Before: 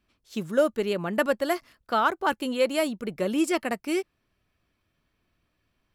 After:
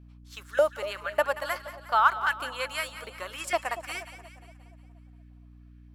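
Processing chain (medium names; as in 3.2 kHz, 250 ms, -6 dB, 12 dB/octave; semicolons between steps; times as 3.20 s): LFO high-pass saw up 1.7 Hz 690–1800 Hz; hum 60 Hz, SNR 19 dB; two-band feedback delay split 890 Hz, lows 236 ms, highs 179 ms, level -12.5 dB; trim -3 dB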